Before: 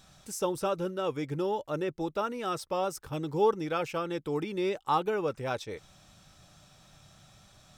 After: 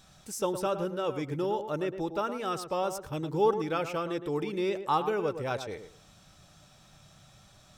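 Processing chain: tape echo 0.111 s, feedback 23%, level -8 dB, low-pass 1400 Hz

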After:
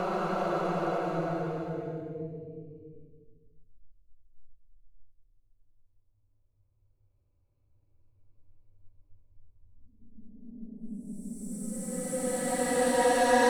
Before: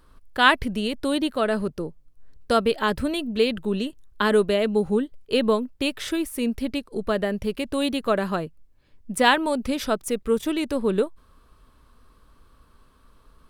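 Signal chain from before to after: Wiener smoothing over 25 samples; soft clip -17 dBFS, distortion -11 dB; thirty-one-band EQ 100 Hz +11 dB, 200 Hz -8 dB, 3150 Hz -9 dB; reverb removal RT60 1.1 s; Paulstretch 15×, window 0.25 s, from 8.33

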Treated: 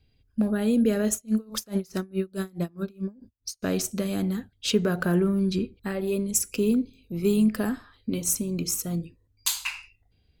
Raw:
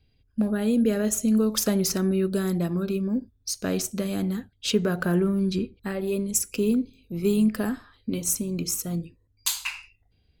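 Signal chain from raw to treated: 1.13–3.63 dB-linear tremolo 4.7 Hz, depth 30 dB

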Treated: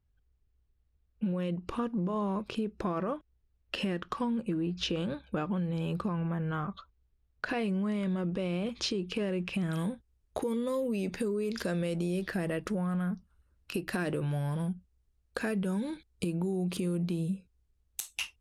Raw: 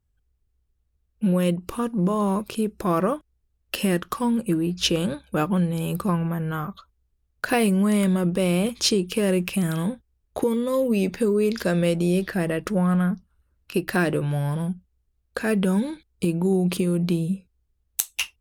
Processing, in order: LPF 4200 Hz 12 dB/oct, from 9.73 s 11000 Hz; limiter -16.5 dBFS, peak gain reduction 10.5 dB; compressor 3:1, threshold -29 dBFS, peak gain reduction 7.5 dB; gain -1.5 dB

